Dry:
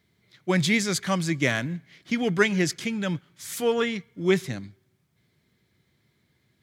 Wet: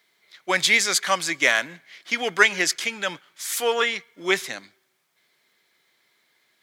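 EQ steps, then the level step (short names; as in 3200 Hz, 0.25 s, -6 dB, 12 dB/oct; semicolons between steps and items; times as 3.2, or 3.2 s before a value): HPF 680 Hz 12 dB/oct; +7.5 dB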